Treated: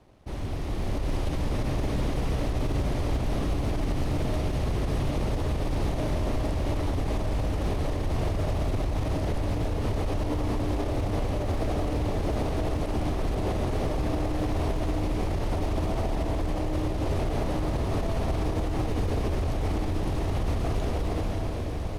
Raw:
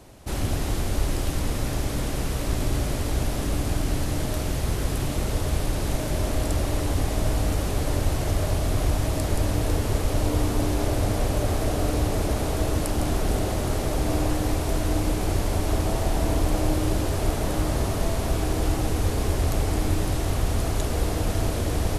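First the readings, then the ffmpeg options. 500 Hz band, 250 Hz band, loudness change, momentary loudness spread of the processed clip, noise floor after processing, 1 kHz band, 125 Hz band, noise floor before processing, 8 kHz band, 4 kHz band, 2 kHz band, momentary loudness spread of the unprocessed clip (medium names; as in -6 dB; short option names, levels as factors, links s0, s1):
-2.5 dB, -2.5 dB, -3.0 dB, 1 LU, -30 dBFS, -2.5 dB, -3.0 dB, -28 dBFS, -13.5 dB, -7.0 dB, -5.0 dB, 3 LU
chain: -filter_complex "[0:a]bandreject=f=7400:w=7.4,asplit=2[s0][s1];[s1]aeval=exprs='(mod(11.2*val(0)+1,2)-1)/11.2':c=same,volume=0.376[s2];[s0][s2]amix=inputs=2:normalize=0,equalizer=f=1500:t=o:w=0.42:g=-5,dynaudnorm=f=150:g=13:m=3.76,alimiter=limit=0.266:level=0:latency=1:release=51,aemphasis=mode=reproduction:type=75fm,aeval=exprs='sgn(val(0))*max(abs(val(0))-0.00237,0)':c=same,volume=0.376"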